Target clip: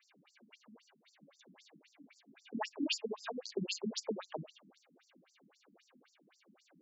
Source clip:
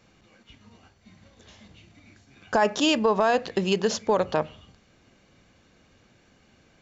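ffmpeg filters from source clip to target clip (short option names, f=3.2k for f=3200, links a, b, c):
-filter_complex "[0:a]acrossover=split=130|3000[a][b][c];[b]acompressor=threshold=-32dB:ratio=5[d];[a][d][c]amix=inputs=3:normalize=0,flanger=delay=22.5:depth=5.2:speed=2.2,afftfilt=real='re*between(b*sr/1024,210*pow(6600/210,0.5+0.5*sin(2*PI*3.8*pts/sr))/1.41,210*pow(6600/210,0.5+0.5*sin(2*PI*3.8*pts/sr))*1.41)':imag='im*between(b*sr/1024,210*pow(6600/210,0.5+0.5*sin(2*PI*3.8*pts/sr))/1.41,210*pow(6600/210,0.5+0.5*sin(2*PI*3.8*pts/sr))*1.41)':win_size=1024:overlap=0.75,volume=3.5dB"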